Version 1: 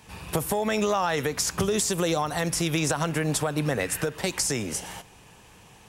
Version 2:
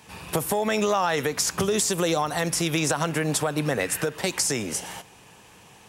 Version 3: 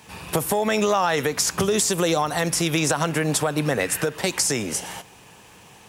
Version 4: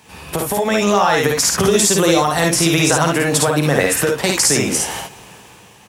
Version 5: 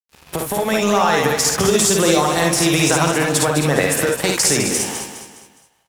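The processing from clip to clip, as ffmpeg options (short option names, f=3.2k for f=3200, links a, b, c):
-af "highpass=f=140:p=1,volume=2dB"
-af "acrusher=bits=10:mix=0:aa=0.000001,volume=2.5dB"
-af "aecho=1:1:54|69:0.708|0.501,dynaudnorm=f=130:g=11:m=11.5dB"
-filter_complex "[0:a]aeval=exprs='sgn(val(0))*max(abs(val(0))-0.0224,0)':c=same,asplit=2[a][b];[b]aecho=0:1:206|412|618|824:0.376|0.15|0.0601|0.0241[c];[a][c]amix=inputs=2:normalize=0,volume=-1dB"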